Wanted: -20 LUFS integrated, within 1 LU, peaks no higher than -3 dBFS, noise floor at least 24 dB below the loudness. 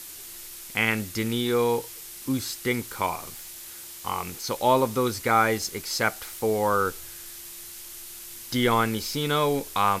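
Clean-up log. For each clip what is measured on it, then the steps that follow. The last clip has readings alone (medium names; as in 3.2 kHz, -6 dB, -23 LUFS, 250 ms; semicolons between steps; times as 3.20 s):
noise floor -42 dBFS; noise floor target -50 dBFS; loudness -25.5 LUFS; peak level -7.5 dBFS; loudness target -20.0 LUFS
-> noise reduction 8 dB, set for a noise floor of -42 dBFS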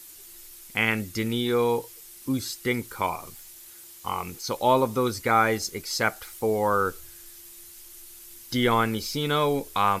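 noise floor -47 dBFS; noise floor target -50 dBFS
-> noise reduction 6 dB, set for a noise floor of -47 dBFS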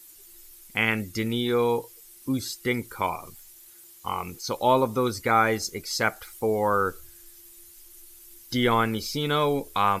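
noise floor -50 dBFS; loudness -26.0 LUFS; peak level -8.0 dBFS; loudness target -20.0 LUFS
-> trim +6 dB; peak limiter -3 dBFS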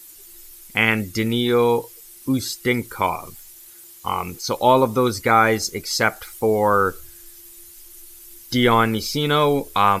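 loudness -20.0 LUFS; peak level -3.0 dBFS; noise floor -44 dBFS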